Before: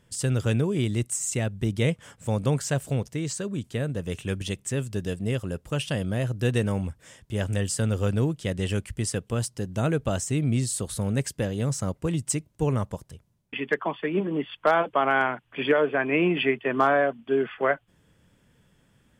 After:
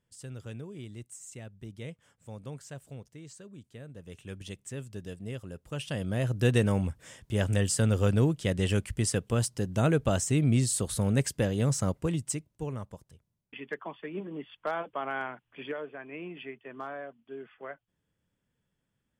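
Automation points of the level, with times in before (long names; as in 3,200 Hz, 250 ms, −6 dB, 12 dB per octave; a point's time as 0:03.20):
0:03.84 −17.5 dB
0:04.47 −11 dB
0:05.55 −11 dB
0:06.38 0 dB
0:11.90 0 dB
0:12.71 −11.5 dB
0:15.47 −11.5 dB
0:15.98 −18.5 dB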